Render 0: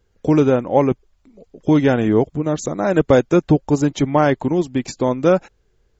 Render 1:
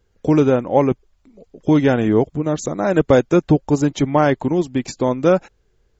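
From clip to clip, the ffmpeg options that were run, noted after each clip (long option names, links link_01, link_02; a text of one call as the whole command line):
ffmpeg -i in.wav -af anull out.wav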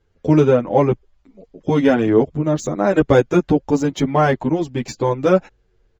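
ffmpeg -i in.wav -filter_complex "[0:a]adynamicsmooth=sensitivity=6:basefreq=6100,asplit=2[link_01][link_02];[link_02]adelay=9,afreqshift=-0.49[link_03];[link_01][link_03]amix=inputs=2:normalize=1,volume=3.5dB" out.wav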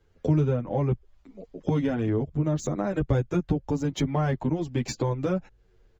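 ffmpeg -i in.wav -filter_complex "[0:a]acrossover=split=150[link_01][link_02];[link_02]acompressor=threshold=-26dB:ratio=10[link_03];[link_01][link_03]amix=inputs=2:normalize=0" out.wav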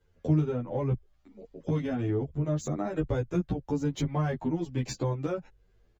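ffmpeg -i in.wav -filter_complex "[0:a]asplit=2[link_01][link_02];[link_02]adelay=11,afreqshift=0.77[link_03];[link_01][link_03]amix=inputs=2:normalize=1,volume=-1dB" out.wav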